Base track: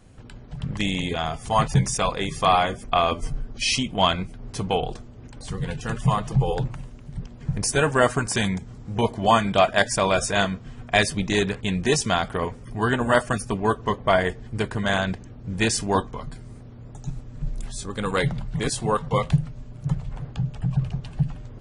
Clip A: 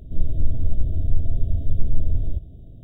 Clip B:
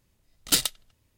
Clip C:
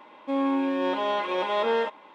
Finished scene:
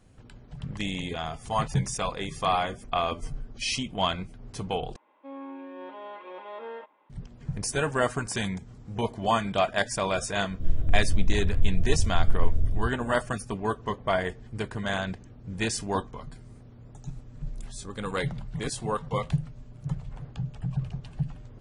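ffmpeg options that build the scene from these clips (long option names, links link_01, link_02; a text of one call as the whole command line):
ffmpeg -i bed.wav -i cue0.wav -i cue1.wav -i cue2.wav -filter_complex "[0:a]volume=-6.5dB[link_01];[3:a]highpass=210,lowpass=2500[link_02];[link_01]asplit=2[link_03][link_04];[link_03]atrim=end=4.964[link_05];[link_02]atrim=end=2.14,asetpts=PTS-STARTPTS,volume=-14.5dB[link_06];[link_04]atrim=start=7.096[link_07];[1:a]atrim=end=2.83,asetpts=PTS-STARTPTS,volume=-3.5dB,afade=type=in:duration=0.004:curve=hsin,afade=type=out:start_time=2.826:duration=0.004:curve=hsin,adelay=10490[link_08];[link_05][link_06]acrossfade=duration=0.004:curve1=hsin:curve2=hsin[link_09];[link_09][link_07]acrossfade=duration=0.004:curve1=hsin:curve2=hsin[link_10];[link_10][link_08]amix=inputs=2:normalize=0" out.wav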